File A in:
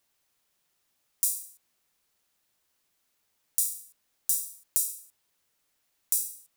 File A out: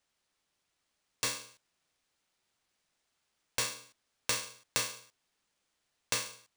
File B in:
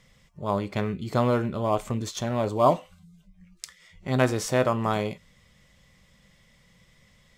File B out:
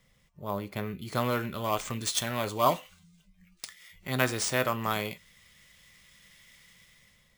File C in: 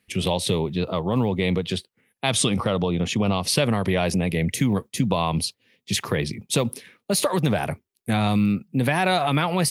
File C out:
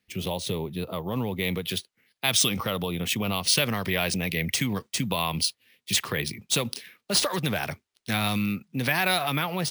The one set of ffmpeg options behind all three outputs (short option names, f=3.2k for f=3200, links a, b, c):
-filter_complex "[0:a]acrossover=split=720|1300[a][b][c];[c]dynaudnorm=f=830:g=3:m=15dB[d];[a][b][d]amix=inputs=3:normalize=0,acrusher=samples=3:mix=1:aa=0.000001,volume=-7dB"